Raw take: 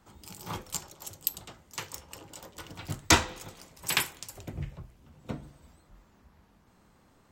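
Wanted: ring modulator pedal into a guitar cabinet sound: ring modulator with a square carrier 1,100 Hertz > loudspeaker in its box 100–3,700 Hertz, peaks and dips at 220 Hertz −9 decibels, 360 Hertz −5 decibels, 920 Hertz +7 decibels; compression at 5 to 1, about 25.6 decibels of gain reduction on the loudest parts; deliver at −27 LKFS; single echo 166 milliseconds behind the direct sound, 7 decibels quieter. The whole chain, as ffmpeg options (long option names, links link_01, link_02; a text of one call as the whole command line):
ffmpeg -i in.wav -af "acompressor=threshold=-46dB:ratio=5,aecho=1:1:166:0.447,aeval=exprs='val(0)*sgn(sin(2*PI*1100*n/s))':channel_layout=same,highpass=100,equalizer=frequency=220:width_type=q:width=4:gain=-9,equalizer=frequency=360:width_type=q:width=4:gain=-5,equalizer=frequency=920:width_type=q:width=4:gain=7,lowpass=frequency=3700:width=0.5412,lowpass=frequency=3700:width=1.3066,volume=23.5dB" out.wav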